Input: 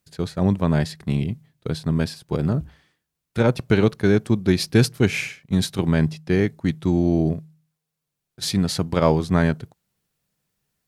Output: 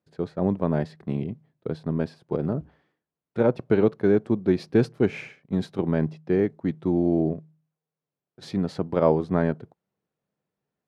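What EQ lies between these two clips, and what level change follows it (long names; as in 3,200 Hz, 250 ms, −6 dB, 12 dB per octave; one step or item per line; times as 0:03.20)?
resonant band-pass 460 Hz, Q 0.73
0.0 dB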